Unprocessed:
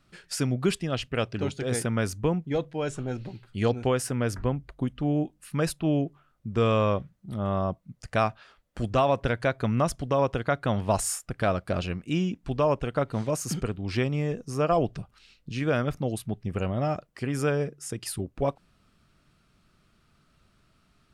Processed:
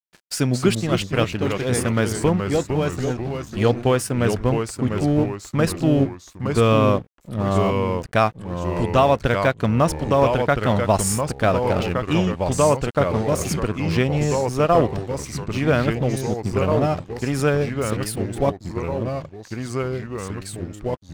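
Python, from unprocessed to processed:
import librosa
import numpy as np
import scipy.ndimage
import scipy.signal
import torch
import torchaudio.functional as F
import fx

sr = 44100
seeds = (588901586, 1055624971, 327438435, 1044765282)

y = np.sign(x) * np.maximum(np.abs(x) - 10.0 ** (-43.5 / 20.0), 0.0)
y = fx.echo_pitch(y, sr, ms=183, semitones=-2, count=3, db_per_echo=-6.0)
y = F.gain(torch.from_numpy(y), 7.0).numpy()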